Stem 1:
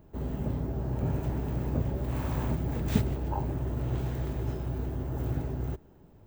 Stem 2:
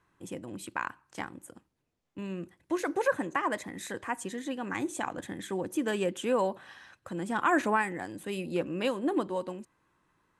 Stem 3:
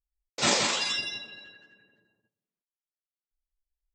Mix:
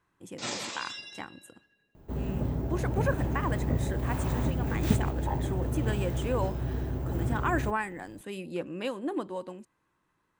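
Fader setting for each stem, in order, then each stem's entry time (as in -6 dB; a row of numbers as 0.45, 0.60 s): +1.0, -3.5, -11.0 dB; 1.95, 0.00, 0.00 s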